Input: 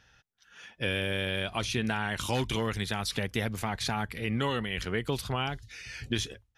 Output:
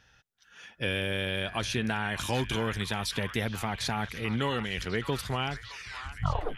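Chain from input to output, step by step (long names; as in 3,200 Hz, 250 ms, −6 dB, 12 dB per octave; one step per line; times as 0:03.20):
turntable brake at the end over 0.76 s
echo through a band-pass that steps 614 ms, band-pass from 1,300 Hz, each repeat 0.7 octaves, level −7.5 dB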